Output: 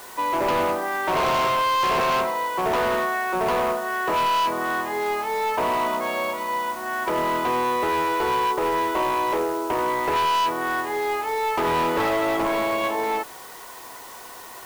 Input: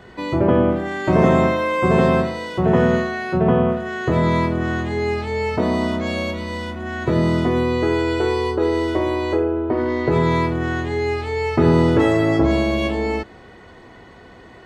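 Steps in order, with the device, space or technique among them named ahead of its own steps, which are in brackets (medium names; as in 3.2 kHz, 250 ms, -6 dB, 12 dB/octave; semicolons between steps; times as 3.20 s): drive-through speaker (band-pass 490–2800 Hz; peaking EQ 1 kHz +10.5 dB 0.58 oct; hard clipper -19.5 dBFS, distortion -8 dB; white noise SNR 20 dB)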